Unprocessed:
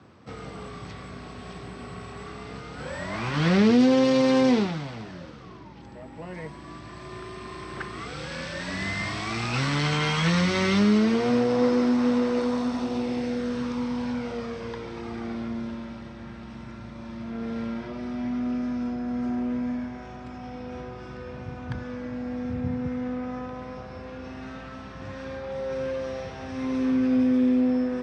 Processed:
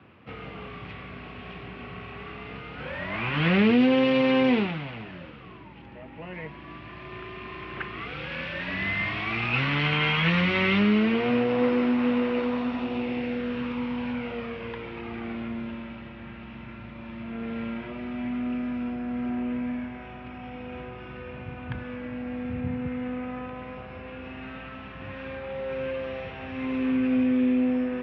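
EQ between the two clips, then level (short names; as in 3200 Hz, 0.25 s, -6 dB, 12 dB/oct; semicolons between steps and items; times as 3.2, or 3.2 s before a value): synth low-pass 2700 Hz, resonance Q 3.5; air absorption 120 m; -1.5 dB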